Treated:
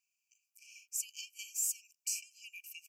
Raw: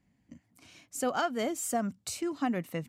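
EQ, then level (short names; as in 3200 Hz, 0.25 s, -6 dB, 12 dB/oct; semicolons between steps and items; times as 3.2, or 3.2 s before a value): brick-wall FIR high-pass 2300 Hz; Butterworth band-stop 3700 Hz, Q 1.4; bell 9500 Hz -8.5 dB 0.4 oct; +6.0 dB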